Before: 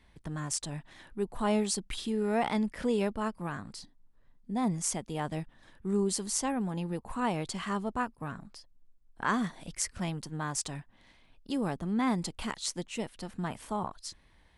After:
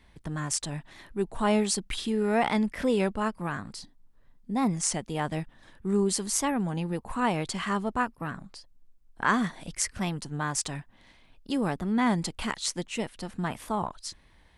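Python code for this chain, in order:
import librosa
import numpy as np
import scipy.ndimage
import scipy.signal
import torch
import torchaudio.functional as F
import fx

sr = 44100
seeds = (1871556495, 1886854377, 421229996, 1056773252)

y = fx.dynamic_eq(x, sr, hz=1900.0, q=1.0, threshold_db=-48.0, ratio=4.0, max_db=3)
y = fx.record_warp(y, sr, rpm=33.33, depth_cents=100.0)
y = y * 10.0 ** (3.5 / 20.0)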